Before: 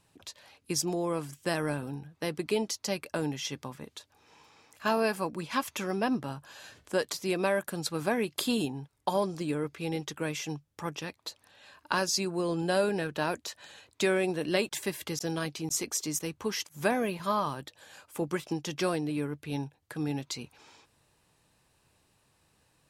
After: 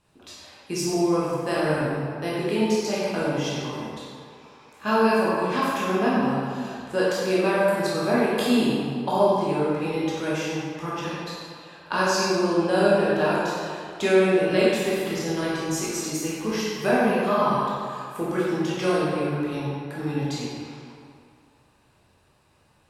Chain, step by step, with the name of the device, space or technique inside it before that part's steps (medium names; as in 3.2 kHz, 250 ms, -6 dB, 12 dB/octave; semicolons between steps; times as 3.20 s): swimming-pool hall (reverberation RT60 2.2 s, pre-delay 13 ms, DRR -8 dB; treble shelf 4.3 kHz -7 dB)